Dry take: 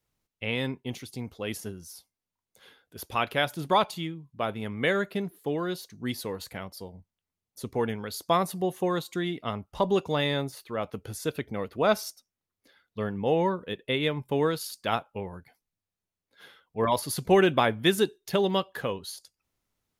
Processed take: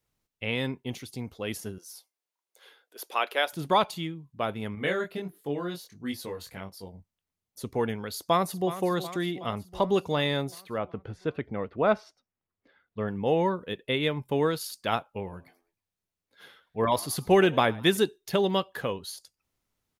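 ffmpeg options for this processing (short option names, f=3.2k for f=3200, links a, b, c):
-filter_complex "[0:a]asettb=1/sr,asplit=3[a][b][c];[a]atrim=end=1.784[d];[b]atrim=start=1.78:end=3.53,asetpts=PTS-STARTPTS,afade=t=in:d=0.004:c=qsin,afade=t=out:st=1.746:d=0.004:c=qsin,highpass=f=370:w=0.5412,highpass=f=370:w=1.3066[e];[c]atrim=start=3.526[f];[d][e]acrossfade=d=0.004:c1=hsin:c2=qsin[g];[g][f]acrossfade=d=0.004:c1=qsin:c2=hsin,asettb=1/sr,asplit=3[h][i][j];[h]atrim=end=4.754[k];[i]atrim=start=4.75:end=6.87,asetpts=PTS-STARTPTS,afade=t=in:d=0.004:c=qsin,afade=t=out:st=2.116:d=0.004:c=qsin,flanger=delay=20:depth=3.1:speed=1.5[l];[j]atrim=start=6.866[m];[k][l]acrossfade=d=0.004:c1=hsin:c2=qsin[n];[n][m]acrossfade=d=0.004:c1=qsin:c2=hsin,asplit=2[o][p];[p]afade=t=in:st=8.11:d=0.01,afade=t=out:st=8.72:d=0.01,aecho=0:1:370|740|1110|1480|1850|2220|2590|2960:0.223872|0.145517|0.094586|0.0614809|0.0399626|0.0259757|0.0168842|0.0109747[q];[o][q]amix=inputs=2:normalize=0,asettb=1/sr,asplit=3[r][s][t];[r]atrim=end=10.784[u];[s]atrim=start=10.78:end=13.08,asetpts=PTS-STARTPTS,afade=t=in:d=0.004:c=qsin,afade=t=out:st=2.296:d=0.004:c=qsin,lowpass=2.2k[v];[t]atrim=start=13.076[w];[u][v]acrossfade=d=0.004:c1=hsin:c2=qsin[x];[x][w]acrossfade=d=0.004:c1=qsin:c2=hsin,asettb=1/sr,asplit=3[y][z][aa];[y]atrim=end=15.114[ab];[z]atrim=start=15.11:end=17.97,asetpts=PTS-STARTPTS,afade=t=in:d=0.004:c=qsin,afade=t=out:st=2.856:d=0.004:c=qsin,asplit=4[ac][ad][ae][af];[ad]adelay=102,afreqshift=83,volume=-22.5dB[ag];[ae]adelay=204,afreqshift=166,volume=-30dB[ah];[af]adelay=306,afreqshift=249,volume=-37.6dB[ai];[ac][ag][ah][ai]amix=inputs=4:normalize=0,atrim=end_sample=126126[aj];[aa]atrim=start=17.966[ak];[ab][aj]acrossfade=d=0.004:c1=hsin:c2=qsin[al];[al][ak]acrossfade=d=0.004:c1=qsin:c2=hsin"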